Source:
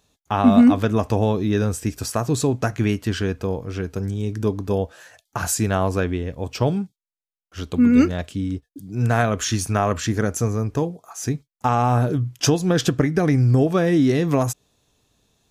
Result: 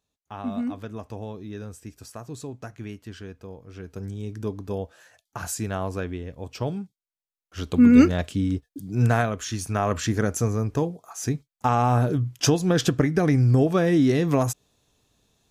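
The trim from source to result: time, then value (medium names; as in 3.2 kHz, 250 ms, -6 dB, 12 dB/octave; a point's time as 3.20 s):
3.60 s -16 dB
4.04 s -8 dB
6.83 s -8 dB
7.85 s +1 dB
9.03 s +1 dB
9.42 s -9 dB
9.97 s -2 dB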